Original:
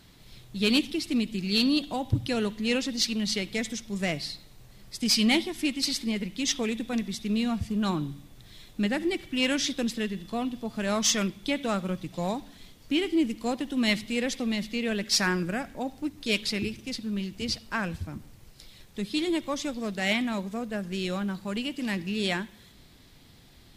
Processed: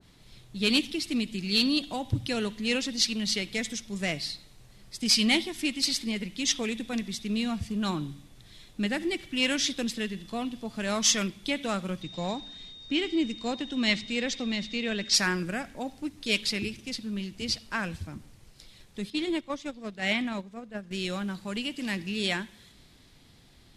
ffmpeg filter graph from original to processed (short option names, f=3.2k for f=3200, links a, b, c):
-filter_complex "[0:a]asettb=1/sr,asplit=3[a][b][c];[a]atrim=end=12.024[d];[b]atrim=start=12.02:end=15.14,asetpts=PTS-STARTPTS,afade=t=in:d=0.004:c=qsin,afade=t=out:st=3.116:d=0.004:c=qsin,lowpass=f=7.2k:w=0.5412,lowpass=f=7.2k:w=1.3066,aeval=exprs='val(0)+0.00631*sin(2*PI*3700*n/s)':c=same[e];[c]atrim=start=15.136[f];[d][e]acrossfade=d=0.004:c1=hsin:c2=qsin[g];[g][f]acrossfade=d=0.004:c1=qsin:c2=hsin,asettb=1/sr,asplit=3[h][i][j];[h]atrim=end=19.104[k];[i]atrim=start=19.1:end=20.91,asetpts=PTS-STARTPTS,afade=t=in:d=0.004:c=qsin,afade=t=out:st=1.806:d=0.004:c=qsin,aemphasis=mode=reproduction:type=cd,agate=range=-9dB:threshold=-31dB:ratio=16:release=100:detection=peak[l];[j]atrim=start=20.906[m];[k][l]acrossfade=d=0.004:c1=hsin:c2=qsin[n];[n][m]acrossfade=d=0.004:c1=qsin:c2=hsin,lowpass=f=12k:w=0.5412,lowpass=f=12k:w=1.3066,adynamicequalizer=threshold=0.00891:dfrequency=1500:dqfactor=0.7:tfrequency=1500:tqfactor=0.7:attack=5:release=100:ratio=0.375:range=2:mode=boostabove:tftype=highshelf,volume=-2.5dB"